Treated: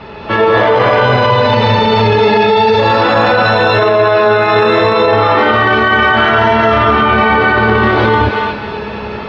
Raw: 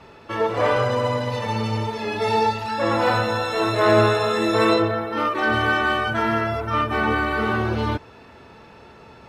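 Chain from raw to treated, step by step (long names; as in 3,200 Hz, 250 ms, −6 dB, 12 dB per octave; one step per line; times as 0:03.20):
low-pass filter 4,400 Hz 24 dB per octave
tuned comb filter 210 Hz, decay 0.24 s, harmonics all, mix 70%
on a send: feedback echo with a high-pass in the loop 264 ms, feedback 29%, high-pass 700 Hz, level −9 dB
on the sum: reverb whose tail is shaped and stops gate 340 ms rising, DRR −6.5 dB
boost into a limiter +23.5 dB
level −1 dB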